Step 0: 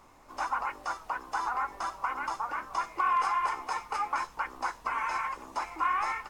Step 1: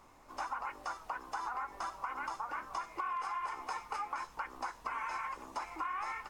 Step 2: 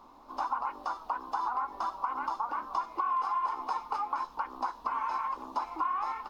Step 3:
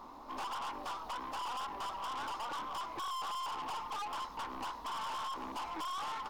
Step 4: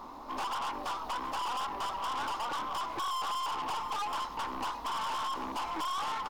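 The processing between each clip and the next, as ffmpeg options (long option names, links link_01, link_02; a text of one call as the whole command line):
ffmpeg -i in.wav -af "acompressor=threshold=-32dB:ratio=6,volume=-3dB" out.wav
ffmpeg -i in.wav -af "equalizer=frequency=125:width_type=o:width=1:gain=-8,equalizer=frequency=250:width_type=o:width=1:gain=9,equalizer=frequency=1000:width_type=o:width=1:gain=10,equalizer=frequency=2000:width_type=o:width=1:gain=-10,equalizer=frequency=4000:width_type=o:width=1:gain=8,equalizer=frequency=8000:width_type=o:width=1:gain=-11" out.wav
ffmpeg -i in.wav -af "aeval=exprs='(tanh(141*val(0)+0.25)-tanh(0.25))/141':channel_layout=same,volume=5dB" out.wav
ffmpeg -i in.wav -af "aecho=1:1:723:0.178,volume=5dB" out.wav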